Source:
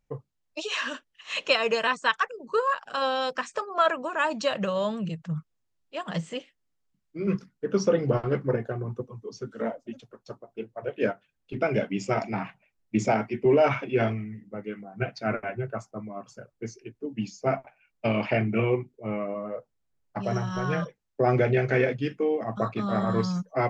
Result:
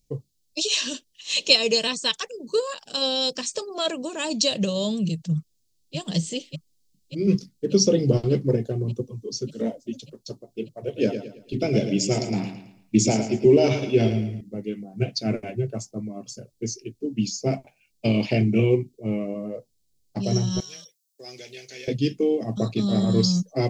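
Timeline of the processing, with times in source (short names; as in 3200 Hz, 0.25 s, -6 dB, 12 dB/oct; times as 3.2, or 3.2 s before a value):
5.35–5.96 echo throw 0.59 s, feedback 75%, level -4.5 dB
10.78–14.41 feedback echo 0.11 s, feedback 37%, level -9 dB
20.6–21.88 differentiator
whole clip: EQ curve 360 Hz 0 dB, 1400 Hz -21 dB, 4300 Hz +9 dB; gain +6.5 dB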